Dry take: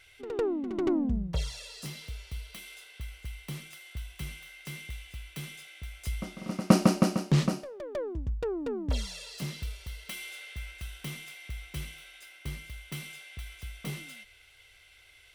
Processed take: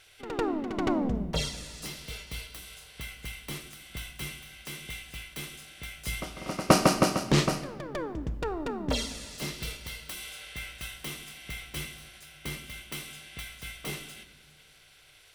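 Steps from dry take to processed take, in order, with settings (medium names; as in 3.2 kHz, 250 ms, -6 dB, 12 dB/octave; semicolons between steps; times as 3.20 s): spectral peaks clipped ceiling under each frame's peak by 15 dB; simulated room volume 1200 m³, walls mixed, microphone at 0.47 m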